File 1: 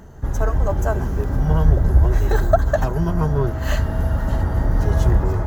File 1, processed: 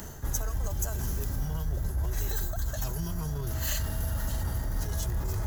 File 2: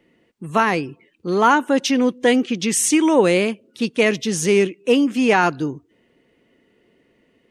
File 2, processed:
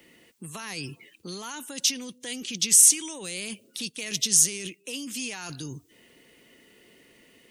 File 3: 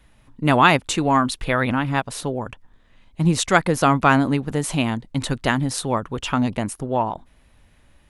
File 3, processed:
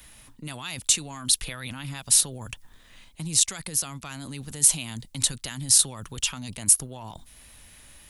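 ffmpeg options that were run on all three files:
-filter_complex "[0:a]areverse,acompressor=threshold=-25dB:ratio=8,areverse,alimiter=limit=-23dB:level=0:latency=1:release=16,acrossover=split=170|3000[a][b][c];[b]acompressor=threshold=-43dB:ratio=4[d];[a][d][c]amix=inputs=3:normalize=0,crystalizer=i=6.5:c=0"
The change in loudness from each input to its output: -12.5, -4.0, -2.0 LU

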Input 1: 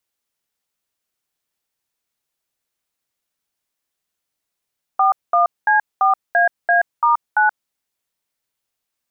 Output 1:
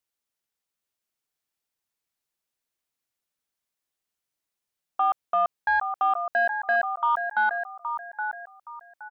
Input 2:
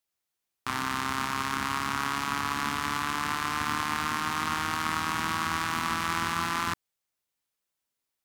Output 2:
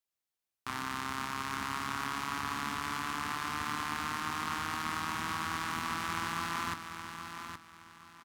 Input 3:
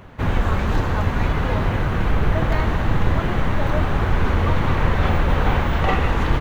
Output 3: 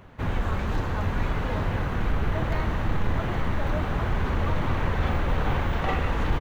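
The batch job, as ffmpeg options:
-af "aecho=1:1:820|1640|2460:0.398|0.111|0.0312,asoftclip=type=tanh:threshold=-5.5dB,volume=-6.5dB"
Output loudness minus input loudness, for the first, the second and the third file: -7.5, -6.5, -6.5 LU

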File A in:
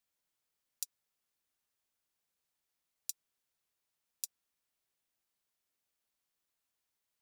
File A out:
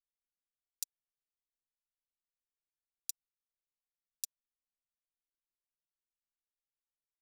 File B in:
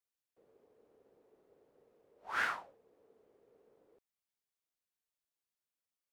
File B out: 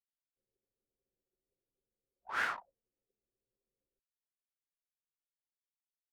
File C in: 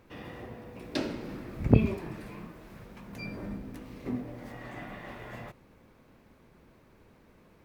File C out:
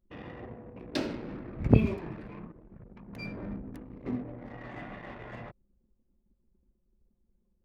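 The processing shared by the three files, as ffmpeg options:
-af "anlmdn=0.0398"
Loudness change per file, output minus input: 0.0, 0.0, +0.5 LU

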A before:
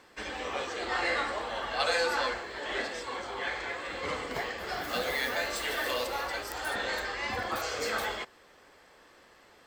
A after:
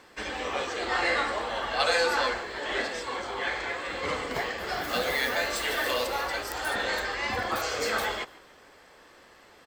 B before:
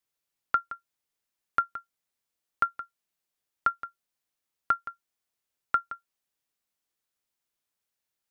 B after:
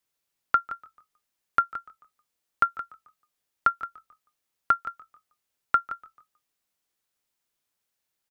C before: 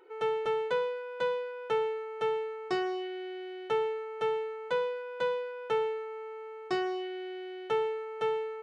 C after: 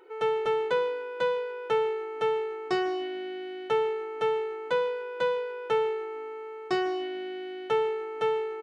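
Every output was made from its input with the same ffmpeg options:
-filter_complex "[0:a]asplit=4[a][b][c][d];[b]adelay=146,afreqshift=-53,volume=-22dB[e];[c]adelay=292,afreqshift=-106,volume=-29.7dB[f];[d]adelay=438,afreqshift=-159,volume=-37.5dB[g];[a][e][f][g]amix=inputs=4:normalize=0,volume=3.5dB"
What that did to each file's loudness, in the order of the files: +3.5, +3.0, +3.5 LU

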